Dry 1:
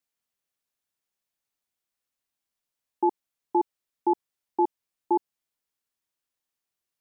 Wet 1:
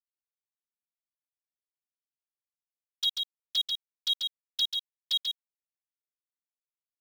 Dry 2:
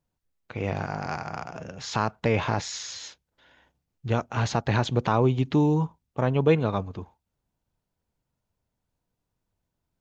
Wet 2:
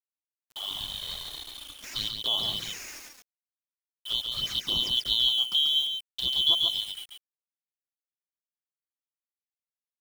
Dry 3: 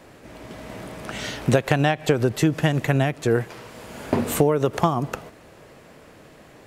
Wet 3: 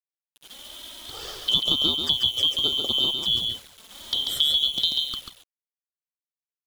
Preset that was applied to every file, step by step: four-band scrambler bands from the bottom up 2413; gate -40 dBFS, range -12 dB; requantised 6-bit, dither none; envelope flanger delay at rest 7.5 ms, full sweep at -20 dBFS; on a send: echo 0.139 s -4.5 dB; on the sum: gain -4 dB

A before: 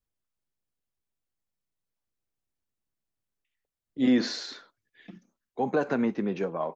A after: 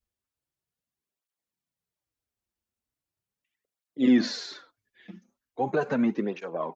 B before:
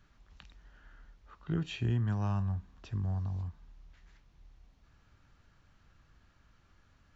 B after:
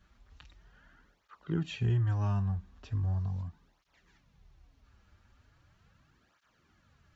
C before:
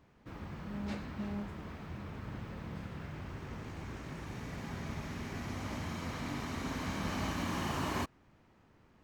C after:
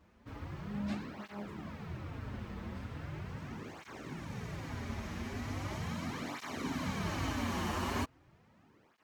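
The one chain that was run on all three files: tape flanging out of phase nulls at 0.39 Hz, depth 7.6 ms; gain +3 dB

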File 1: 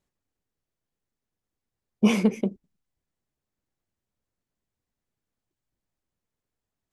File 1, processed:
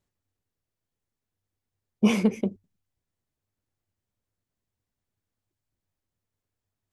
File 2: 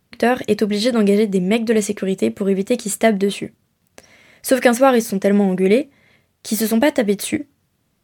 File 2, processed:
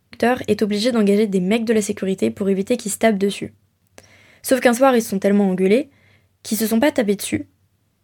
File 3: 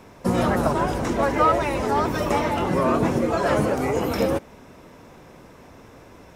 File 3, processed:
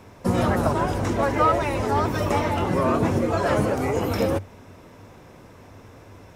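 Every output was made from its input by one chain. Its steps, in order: bell 97 Hz +13 dB 0.25 oct; gain -1 dB

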